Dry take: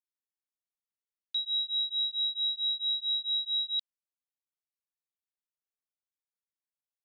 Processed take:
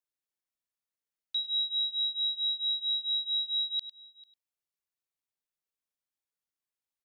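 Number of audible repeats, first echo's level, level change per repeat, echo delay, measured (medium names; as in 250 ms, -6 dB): 3, -11.5 dB, no regular repeats, 101 ms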